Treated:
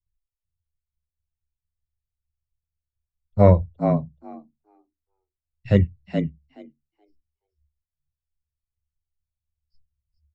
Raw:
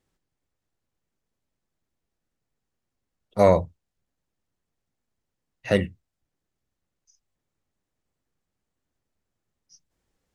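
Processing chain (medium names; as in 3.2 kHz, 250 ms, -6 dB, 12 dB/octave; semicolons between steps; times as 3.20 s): knee-point frequency compression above 3.9 kHz 1.5:1; reverb removal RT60 1.5 s; in parallel at -2 dB: compression, threshold -29 dBFS, peak gain reduction 16.5 dB; on the sum: RIAA curve playback; on a send: frequency-shifting echo 425 ms, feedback 31%, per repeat +71 Hz, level -4 dB; on the sum: three bands expanded up and down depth 100%; trim -10 dB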